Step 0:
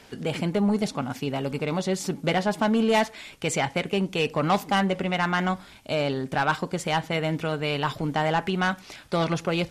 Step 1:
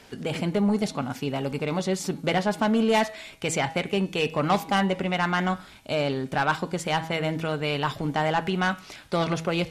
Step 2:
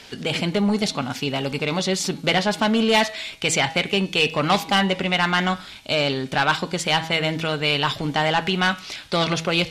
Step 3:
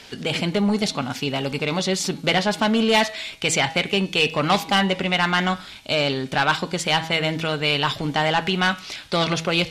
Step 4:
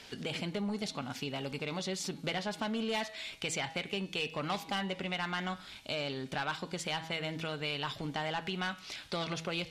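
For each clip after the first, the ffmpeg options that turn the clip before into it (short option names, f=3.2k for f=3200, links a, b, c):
-af "bandreject=f=161.7:t=h:w=4,bandreject=f=323.4:t=h:w=4,bandreject=f=485.1:t=h:w=4,bandreject=f=646.8:t=h:w=4,bandreject=f=808.5:t=h:w=4,bandreject=f=970.2:t=h:w=4,bandreject=f=1.1319k:t=h:w=4,bandreject=f=1.2936k:t=h:w=4,bandreject=f=1.4553k:t=h:w=4,bandreject=f=1.617k:t=h:w=4,bandreject=f=1.7787k:t=h:w=4,bandreject=f=1.9404k:t=h:w=4,bandreject=f=2.1021k:t=h:w=4,bandreject=f=2.2638k:t=h:w=4,bandreject=f=2.4255k:t=h:w=4,bandreject=f=2.5872k:t=h:w=4,bandreject=f=2.7489k:t=h:w=4,bandreject=f=2.9106k:t=h:w=4,bandreject=f=3.0723k:t=h:w=4,bandreject=f=3.234k:t=h:w=4,bandreject=f=3.3957k:t=h:w=4,bandreject=f=3.5574k:t=h:w=4,bandreject=f=3.7191k:t=h:w=4,bandreject=f=3.8808k:t=h:w=4,bandreject=f=4.0425k:t=h:w=4,bandreject=f=4.2042k:t=h:w=4,bandreject=f=4.3659k:t=h:w=4,bandreject=f=4.5276k:t=h:w=4"
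-af "equalizer=f=3.8k:t=o:w=1.9:g=10,asoftclip=type=tanh:threshold=-9dB,volume=2.5dB"
-af anull
-af "acompressor=threshold=-30dB:ratio=2,volume=-8dB"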